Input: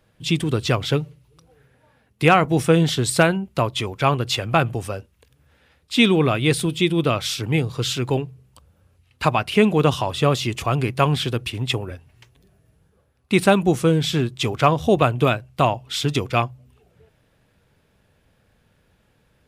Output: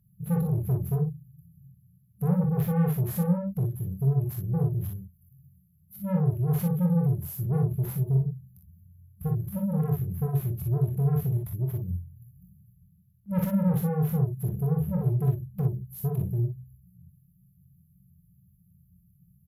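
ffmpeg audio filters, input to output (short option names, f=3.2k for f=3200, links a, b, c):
-filter_complex "[0:a]afftfilt=real='re*(1-between(b*sr/4096,200,11000))':imag='im*(1-between(b*sr/4096,200,11000))':win_size=4096:overlap=0.75,asplit=2[a][b];[b]highpass=f=720:p=1,volume=30dB,asoftclip=type=tanh:threshold=-12.5dB[c];[a][c]amix=inputs=2:normalize=0,lowpass=f=2.7k:p=1,volume=-6dB,aecho=1:1:23|34|45|59:0.473|0.168|0.501|0.531,volume=-6.5dB"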